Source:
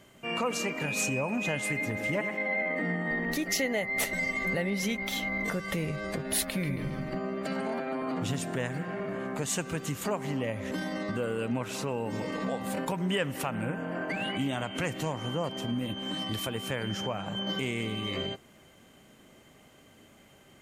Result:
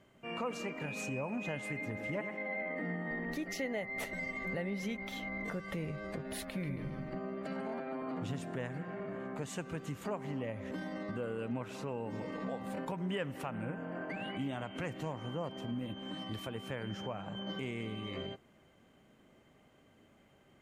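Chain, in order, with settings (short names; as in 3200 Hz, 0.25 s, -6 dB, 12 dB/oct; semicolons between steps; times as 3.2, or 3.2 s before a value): high shelf 3600 Hz -11.5 dB; gain -6.5 dB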